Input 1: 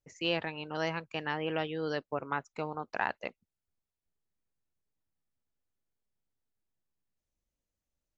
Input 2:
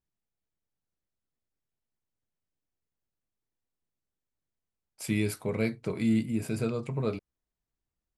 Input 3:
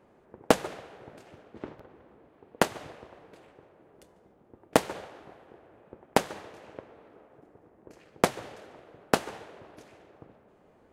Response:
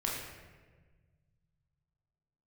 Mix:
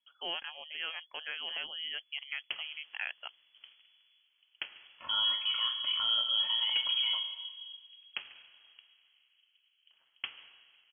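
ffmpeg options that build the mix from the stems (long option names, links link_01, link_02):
-filter_complex "[0:a]volume=-5.5dB,asplit=2[link_01][link_02];[1:a]aecho=1:1:2.5:0.67,alimiter=level_in=1dB:limit=-24dB:level=0:latency=1:release=23,volume=-1dB,volume=-0.5dB,asplit=3[link_03][link_04][link_05];[link_03]atrim=end=4.14,asetpts=PTS-STARTPTS,afade=type=out:start_time=4.136:duration=0.004:curve=hsin[link_06];[link_04]atrim=start=4.14:end=4.71,asetpts=PTS-STARTPTS,volume=0[link_07];[link_05]atrim=start=4.71,asetpts=PTS-STARTPTS,afade=type=in:duration=0.004:curve=hsin[link_08];[link_06][link_07][link_08]concat=n=3:v=0:a=1,asplit=2[link_09][link_10];[link_10]volume=-8.5dB[link_11];[2:a]adelay=2000,volume=-16dB,asplit=2[link_12][link_13];[link_13]volume=-15.5dB[link_14];[link_02]apad=whole_len=569990[link_15];[link_12][link_15]sidechaincompress=threshold=-44dB:ratio=8:attack=42:release=241[link_16];[3:a]atrim=start_sample=2205[link_17];[link_11][link_14]amix=inputs=2:normalize=0[link_18];[link_18][link_17]afir=irnorm=-1:irlink=0[link_19];[link_01][link_09][link_16][link_19]amix=inputs=4:normalize=0,asoftclip=type=tanh:threshold=-19dB,lowpass=frequency=2900:width_type=q:width=0.5098,lowpass=frequency=2900:width_type=q:width=0.6013,lowpass=frequency=2900:width_type=q:width=0.9,lowpass=frequency=2900:width_type=q:width=2.563,afreqshift=-3400"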